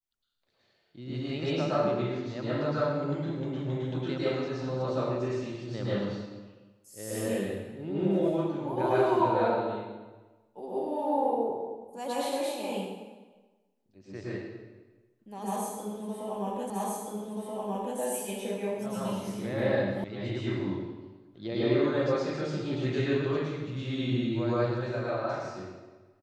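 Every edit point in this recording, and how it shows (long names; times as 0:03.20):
0:16.70: the same again, the last 1.28 s
0:20.04: cut off before it has died away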